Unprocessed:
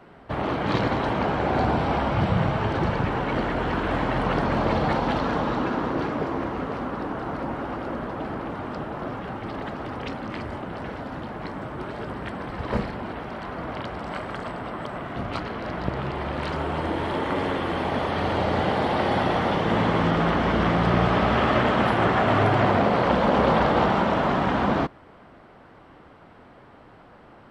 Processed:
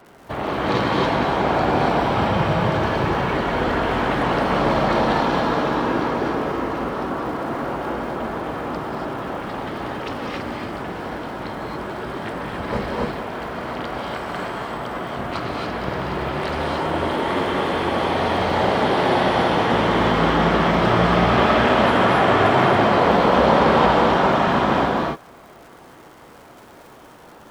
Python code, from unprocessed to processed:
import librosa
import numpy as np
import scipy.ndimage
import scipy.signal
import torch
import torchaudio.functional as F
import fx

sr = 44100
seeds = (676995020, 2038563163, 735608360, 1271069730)

y = fx.bass_treble(x, sr, bass_db=-4, treble_db=3)
y = fx.dmg_crackle(y, sr, seeds[0], per_s=170.0, level_db=-41.0)
y = fx.rev_gated(y, sr, seeds[1], gate_ms=310, shape='rising', drr_db=-1.5)
y = y * 10.0 ** (1.5 / 20.0)